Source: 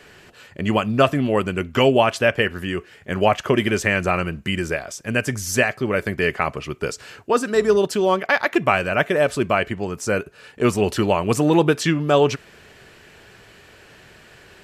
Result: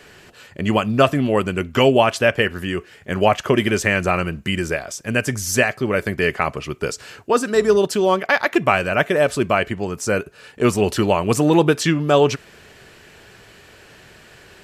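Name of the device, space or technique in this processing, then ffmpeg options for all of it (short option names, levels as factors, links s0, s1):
exciter from parts: -filter_complex "[0:a]asplit=2[s0][s1];[s1]highpass=3100,asoftclip=type=tanh:threshold=0.106,volume=0.251[s2];[s0][s2]amix=inputs=2:normalize=0,volume=1.19"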